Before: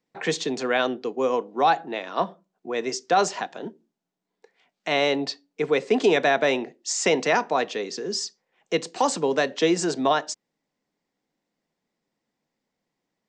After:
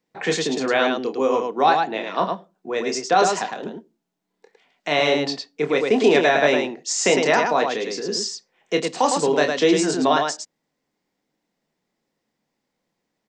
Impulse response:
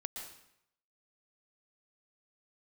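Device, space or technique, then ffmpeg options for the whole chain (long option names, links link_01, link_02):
slapback doubling: -filter_complex "[0:a]asplit=3[link_01][link_02][link_03];[link_02]adelay=27,volume=-7dB[link_04];[link_03]adelay=107,volume=-4.5dB[link_05];[link_01][link_04][link_05]amix=inputs=3:normalize=0,volume=2dB"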